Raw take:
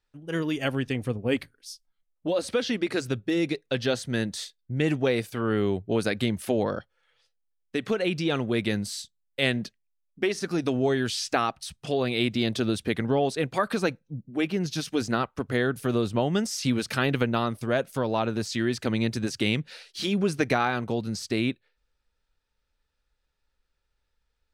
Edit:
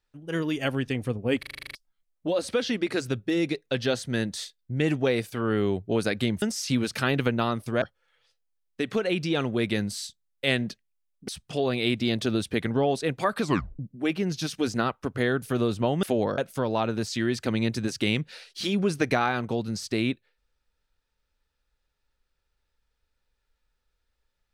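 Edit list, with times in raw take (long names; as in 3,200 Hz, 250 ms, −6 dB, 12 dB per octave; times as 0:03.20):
0:01.39: stutter in place 0.04 s, 9 plays
0:06.42–0:06.77: swap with 0:16.37–0:17.77
0:10.23–0:11.62: remove
0:13.76: tape stop 0.37 s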